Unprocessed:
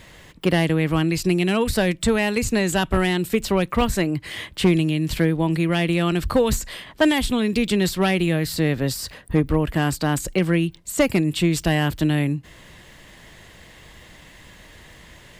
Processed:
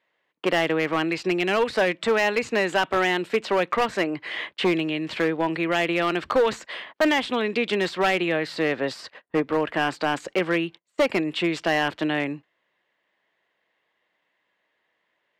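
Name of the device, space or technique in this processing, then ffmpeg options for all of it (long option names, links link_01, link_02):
walkie-talkie: -af "highpass=460,lowpass=2700,asoftclip=type=hard:threshold=-19dB,agate=range=-27dB:threshold=-42dB:ratio=16:detection=peak,volume=4dB"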